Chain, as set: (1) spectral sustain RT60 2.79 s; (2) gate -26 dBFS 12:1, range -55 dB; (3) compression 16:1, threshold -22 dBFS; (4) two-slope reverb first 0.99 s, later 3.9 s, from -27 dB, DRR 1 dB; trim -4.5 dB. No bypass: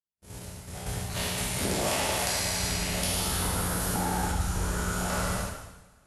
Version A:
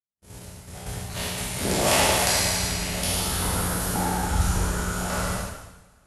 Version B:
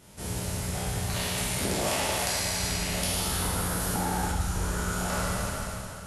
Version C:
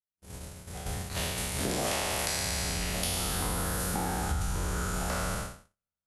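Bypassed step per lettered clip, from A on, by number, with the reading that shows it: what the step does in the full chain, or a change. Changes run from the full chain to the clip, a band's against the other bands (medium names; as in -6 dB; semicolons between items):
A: 3, mean gain reduction 2.5 dB; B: 2, momentary loudness spread change -8 LU; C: 4, loudness change -2.5 LU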